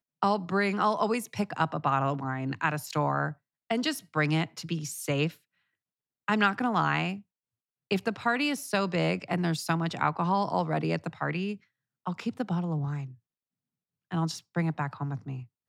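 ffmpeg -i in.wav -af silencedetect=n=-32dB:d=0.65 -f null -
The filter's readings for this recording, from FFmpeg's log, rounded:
silence_start: 5.28
silence_end: 6.28 | silence_duration: 1.00
silence_start: 7.15
silence_end: 7.91 | silence_duration: 0.76
silence_start: 13.04
silence_end: 14.12 | silence_duration: 1.08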